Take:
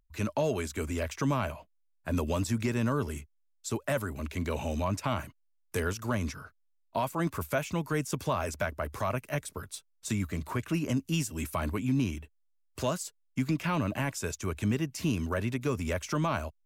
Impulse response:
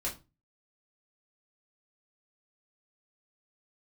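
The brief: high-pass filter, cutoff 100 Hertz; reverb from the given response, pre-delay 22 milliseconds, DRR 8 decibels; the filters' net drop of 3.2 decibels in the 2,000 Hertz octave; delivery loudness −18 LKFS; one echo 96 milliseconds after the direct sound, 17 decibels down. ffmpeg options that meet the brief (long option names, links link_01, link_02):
-filter_complex "[0:a]highpass=100,equalizer=frequency=2000:width_type=o:gain=-4.5,aecho=1:1:96:0.141,asplit=2[link_01][link_02];[1:a]atrim=start_sample=2205,adelay=22[link_03];[link_02][link_03]afir=irnorm=-1:irlink=0,volume=-11dB[link_04];[link_01][link_04]amix=inputs=2:normalize=0,volume=14dB"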